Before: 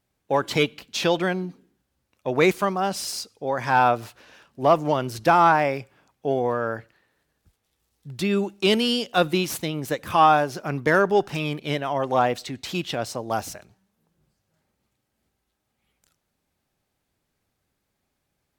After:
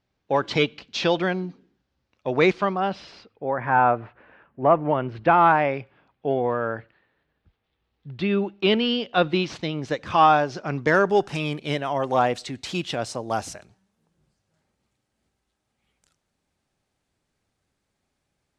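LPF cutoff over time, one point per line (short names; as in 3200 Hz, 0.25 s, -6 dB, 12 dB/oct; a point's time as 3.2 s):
LPF 24 dB/oct
2.36 s 5500 Hz
3.62 s 2100 Hz
4.71 s 2100 Hz
5.66 s 3600 Hz
8.99 s 3600 Hz
9.98 s 6000 Hz
10.66 s 6000 Hz
11.3 s 9900 Hz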